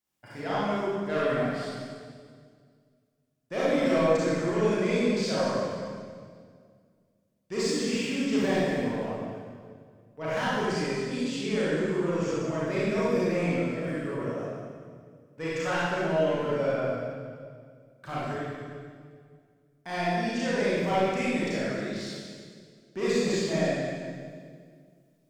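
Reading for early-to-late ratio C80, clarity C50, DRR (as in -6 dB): -2.0 dB, -5.5 dB, -10.0 dB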